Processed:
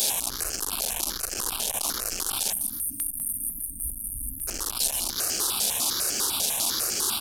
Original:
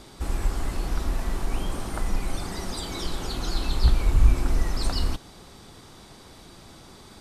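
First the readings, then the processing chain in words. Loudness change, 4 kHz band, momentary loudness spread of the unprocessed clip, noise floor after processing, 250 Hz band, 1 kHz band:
+2.5 dB, +8.0 dB, 24 LU, −37 dBFS, −8.0 dB, 0.0 dB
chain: linear delta modulator 64 kbit/s, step −20 dBFS
thirty-one-band graphic EQ 160 Hz −10 dB, 2,000 Hz −11 dB, 8,000 Hz −4 dB
in parallel at −2 dB: speech leveller 0.5 s
on the sum: RIAA equalisation recording
time-frequency box erased 0:02.52–0:04.48, 310–8,500 Hz
on a send: repeating echo 276 ms, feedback 17%, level −18.5 dB
on the sum: step-sequenced phaser 10 Hz 320–3,700 Hz
level −7.5 dB

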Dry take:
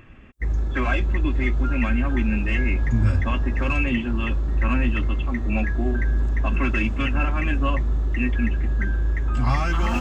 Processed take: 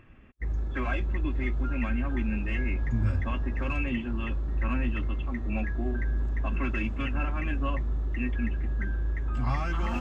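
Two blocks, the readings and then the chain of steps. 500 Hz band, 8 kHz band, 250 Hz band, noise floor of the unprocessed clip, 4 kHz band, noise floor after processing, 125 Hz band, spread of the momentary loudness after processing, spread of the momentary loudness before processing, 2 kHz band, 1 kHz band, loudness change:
−7.0 dB, can't be measured, −7.0 dB, −26 dBFS, −9.5 dB, −33 dBFS, −7.0 dB, 3 LU, 3 LU, −8.5 dB, −7.5 dB, −7.0 dB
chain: high-shelf EQ 4,500 Hz −7.5 dB
level −7 dB

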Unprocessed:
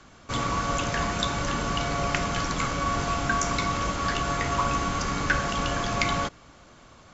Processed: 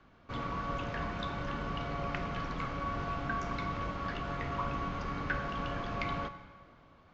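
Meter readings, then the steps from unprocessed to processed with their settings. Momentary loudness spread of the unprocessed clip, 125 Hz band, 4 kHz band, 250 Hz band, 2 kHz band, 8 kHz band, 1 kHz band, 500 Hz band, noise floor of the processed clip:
2 LU, −8.0 dB, −15.0 dB, −8.5 dB, −10.5 dB, can't be measured, −9.5 dB, −9.0 dB, −60 dBFS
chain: high-frequency loss of the air 270 metres
dense smooth reverb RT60 1.9 s, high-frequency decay 0.8×, DRR 11 dB
level −8.5 dB

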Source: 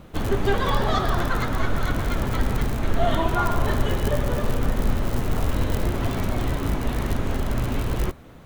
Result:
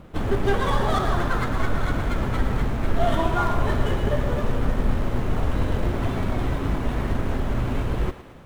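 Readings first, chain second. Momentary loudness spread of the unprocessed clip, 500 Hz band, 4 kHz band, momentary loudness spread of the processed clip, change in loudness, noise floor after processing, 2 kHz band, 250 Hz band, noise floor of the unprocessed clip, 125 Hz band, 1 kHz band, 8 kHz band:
4 LU, 0.0 dB, −3.0 dB, 4 LU, 0.0 dB, −41 dBFS, −0.5 dB, 0.0 dB, −44 dBFS, 0.0 dB, 0.0 dB, −6.0 dB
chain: running median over 9 samples
on a send: feedback echo with a high-pass in the loop 111 ms, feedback 61%, level −12 dB

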